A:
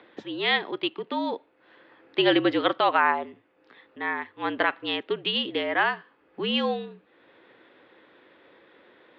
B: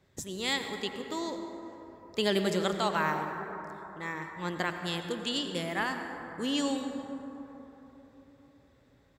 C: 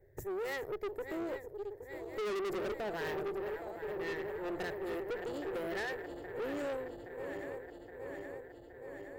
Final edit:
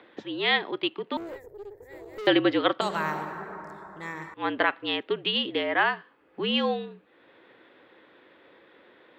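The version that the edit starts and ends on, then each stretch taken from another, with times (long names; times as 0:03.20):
A
0:01.17–0:02.27: punch in from C
0:02.81–0:04.34: punch in from B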